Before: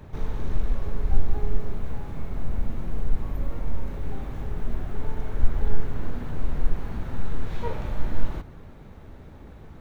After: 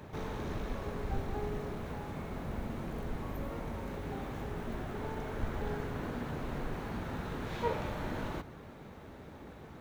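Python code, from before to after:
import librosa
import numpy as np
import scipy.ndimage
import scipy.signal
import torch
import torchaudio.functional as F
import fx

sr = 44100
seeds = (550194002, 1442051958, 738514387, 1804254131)

y = fx.highpass(x, sr, hz=220.0, slope=6)
y = y * librosa.db_to_amplitude(1.0)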